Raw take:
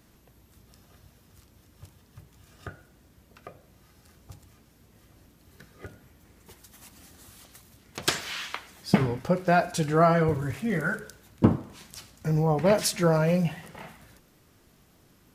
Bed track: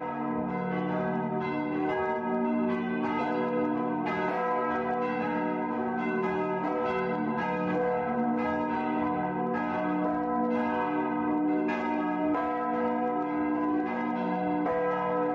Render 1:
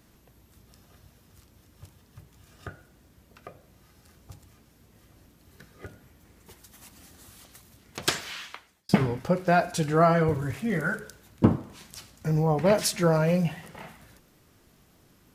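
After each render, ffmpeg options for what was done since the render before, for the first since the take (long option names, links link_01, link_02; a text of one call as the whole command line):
ffmpeg -i in.wav -filter_complex "[0:a]asplit=2[link_01][link_02];[link_01]atrim=end=8.89,asetpts=PTS-STARTPTS,afade=type=out:start_time=8.08:duration=0.81[link_03];[link_02]atrim=start=8.89,asetpts=PTS-STARTPTS,afade=type=in:duration=0.004:curve=hsin[link_04];[link_03][link_04]concat=n=2:v=0:a=1" out.wav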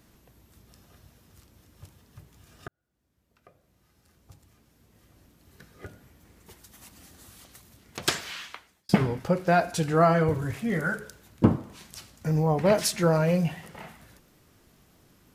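ffmpeg -i in.wav -filter_complex "[0:a]asplit=2[link_01][link_02];[link_01]atrim=end=2.68,asetpts=PTS-STARTPTS,afade=type=out:start_time=2.676:duration=0.004:curve=hsin[link_03];[link_02]atrim=start=2.68,asetpts=PTS-STARTPTS,afade=type=in:duration=3.18[link_04];[link_03][link_04]concat=n=2:v=0:a=1" out.wav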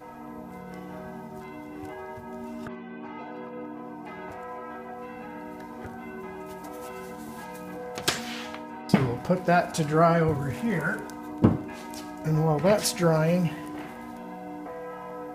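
ffmpeg -i in.wav -i bed.wav -filter_complex "[1:a]volume=-10dB[link_01];[0:a][link_01]amix=inputs=2:normalize=0" out.wav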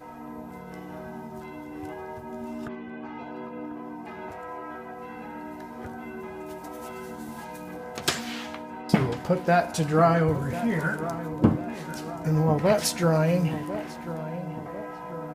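ffmpeg -i in.wav -filter_complex "[0:a]asplit=2[link_01][link_02];[link_02]adelay=13,volume=-13dB[link_03];[link_01][link_03]amix=inputs=2:normalize=0,asplit=2[link_04][link_05];[link_05]adelay=1044,lowpass=frequency=1800:poles=1,volume=-12.5dB,asplit=2[link_06][link_07];[link_07]adelay=1044,lowpass=frequency=1800:poles=1,volume=0.53,asplit=2[link_08][link_09];[link_09]adelay=1044,lowpass=frequency=1800:poles=1,volume=0.53,asplit=2[link_10][link_11];[link_11]adelay=1044,lowpass=frequency=1800:poles=1,volume=0.53,asplit=2[link_12][link_13];[link_13]adelay=1044,lowpass=frequency=1800:poles=1,volume=0.53[link_14];[link_04][link_06][link_08][link_10][link_12][link_14]amix=inputs=6:normalize=0" out.wav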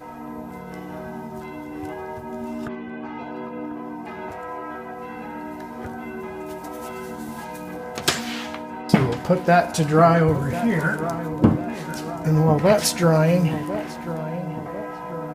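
ffmpeg -i in.wav -af "volume=5dB,alimiter=limit=-1dB:level=0:latency=1" out.wav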